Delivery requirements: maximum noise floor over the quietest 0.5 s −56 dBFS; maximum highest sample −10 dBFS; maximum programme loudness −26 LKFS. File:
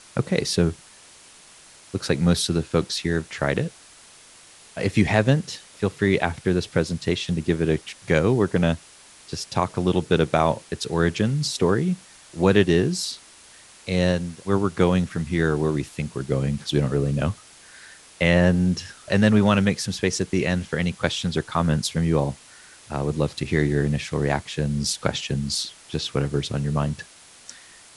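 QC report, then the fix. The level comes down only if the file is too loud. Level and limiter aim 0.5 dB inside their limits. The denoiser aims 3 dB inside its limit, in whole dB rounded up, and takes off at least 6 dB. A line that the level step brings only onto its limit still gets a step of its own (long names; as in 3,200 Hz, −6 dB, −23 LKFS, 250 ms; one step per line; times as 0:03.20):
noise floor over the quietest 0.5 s −49 dBFS: out of spec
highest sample −3.5 dBFS: out of spec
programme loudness −23.5 LKFS: out of spec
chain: broadband denoise 7 dB, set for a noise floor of −49 dBFS
level −3 dB
brickwall limiter −10.5 dBFS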